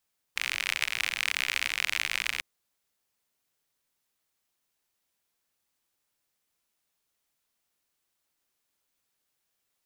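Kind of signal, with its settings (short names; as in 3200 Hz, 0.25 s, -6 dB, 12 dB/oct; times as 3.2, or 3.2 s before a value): rain from filtered ticks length 2.05 s, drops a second 62, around 2300 Hz, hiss -24 dB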